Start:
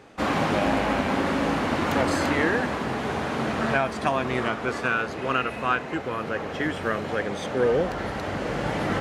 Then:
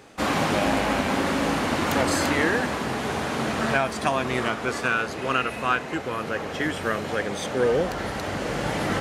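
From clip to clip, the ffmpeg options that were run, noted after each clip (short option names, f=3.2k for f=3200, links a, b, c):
-af "highshelf=f=4.8k:g=10.5"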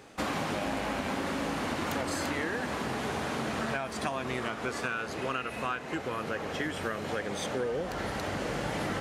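-af "acompressor=threshold=-26dB:ratio=6,volume=-3dB"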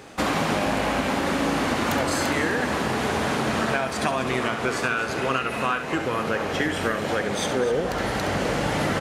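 -af "aecho=1:1:68|255:0.335|0.237,volume=8dB"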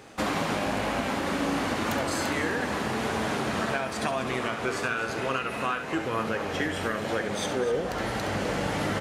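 -af "flanger=delay=8.8:depth=1.8:regen=74:speed=0.98:shape=sinusoidal"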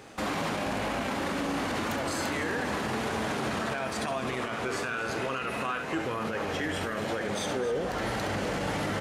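-af "alimiter=limit=-22.5dB:level=0:latency=1:release=15"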